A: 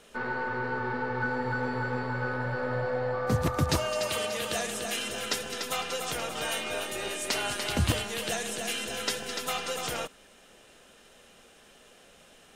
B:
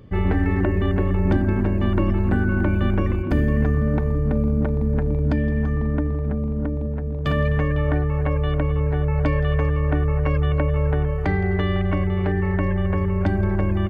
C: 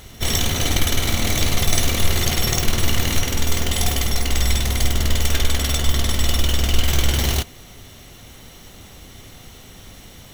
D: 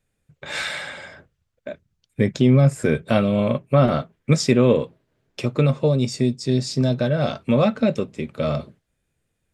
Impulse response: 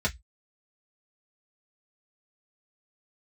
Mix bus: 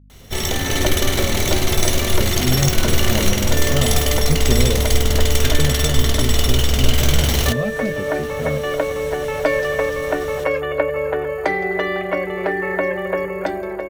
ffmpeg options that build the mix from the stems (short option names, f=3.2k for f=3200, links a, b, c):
-filter_complex "[0:a]acompressor=threshold=-41dB:ratio=2,adelay=550,volume=-14dB[a];[1:a]highpass=f=480:t=q:w=4.9,crystalizer=i=6.5:c=0,adelay=200,volume=-9.5dB,asplit=2[b][c];[c]volume=-12dB[d];[2:a]adelay=100,volume=-3.5dB[e];[3:a]aemphasis=mode=reproduction:type=bsi,volume=-16.5dB,asplit=2[f][g];[g]apad=whole_len=621375[h];[b][h]sidechaincompress=threshold=-34dB:ratio=8:attack=16:release=212[i];[4:a]atrim=start_sample=2205[j];[d][j]afir=irnorm=-1:irlink=0[k];[a][i][e][f][k]amix=inputs=5:normalize=0,dynaudnorm=f=110:g=13:m=9dB,aeval=exprs='val(0)+0.00501*(sin(2*PI*50*n/s)+sin(2*PI*2*50*n/s)/2+sin(2*PI*3*50*n/s)/3+sin(2*PI*4*50*n/s)/4+sin(2*PI*5*50*n/s)/5)':c=same"